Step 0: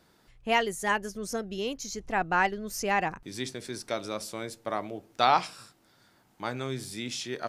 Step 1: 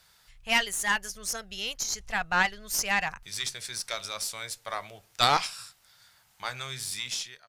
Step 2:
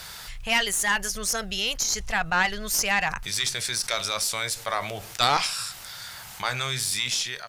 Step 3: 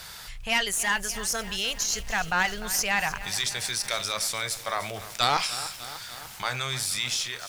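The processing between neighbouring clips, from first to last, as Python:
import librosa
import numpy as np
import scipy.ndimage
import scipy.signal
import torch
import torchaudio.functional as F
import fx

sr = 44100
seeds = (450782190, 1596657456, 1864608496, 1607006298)

y1 = fx.fade_out_tail(x, sr, length_s=0.51)
y1 = fx.tone_stack(y1, sr, knobs='10-0-10')
y1 = fx.cheby_harmonics(y1, sr, harmonics=(4,), levels_db=(-15,), full_scale_db=-15.0)
y1 = y1 * librosa.db_to_amplitude(8.5)
y2 = fx.env_flatten(y1, sr, amount_pct=50)
y3 = fx.echo_crushed(y2, sr, ms=298, feedback_pct=80, bits=6, wet_db=-14.0)
y3 = y3 * librosa.db_to_amplitude(-2.0)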